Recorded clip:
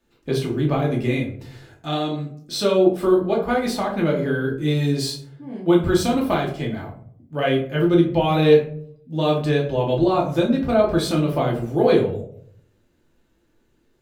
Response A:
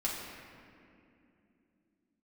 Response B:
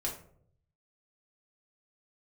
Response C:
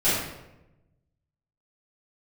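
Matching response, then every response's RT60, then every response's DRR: B; 2.7, 0.60, 0.95 seconds; −5.0, −2.5, −16.0 decibels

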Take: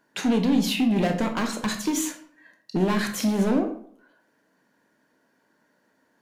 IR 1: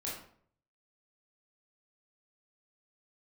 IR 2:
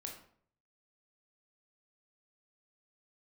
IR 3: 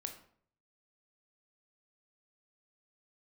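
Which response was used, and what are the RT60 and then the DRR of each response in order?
3; 0.55, 0.55, 0.55 seconds; −6.0, 0.5, 5.0 decibels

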